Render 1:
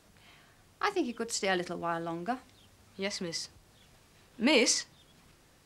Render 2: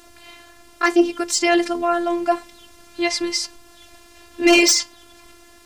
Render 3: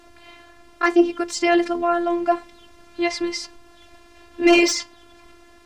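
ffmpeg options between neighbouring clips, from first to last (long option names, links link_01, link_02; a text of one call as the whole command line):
ffmpeg -i in.wav -af "afftfilt=real='hypot(re,im)*cos(PI*b)':imag='0':win_size=512:overlap=0.75,aeval=exprs='0.266*sin(PI/2*2*val(0)/0.266)':channel_layout=same,volume=7.5dB" out.wav
ffmpeg -i in.wav -af "lowpass=frequency=2500:poles=1" out.wav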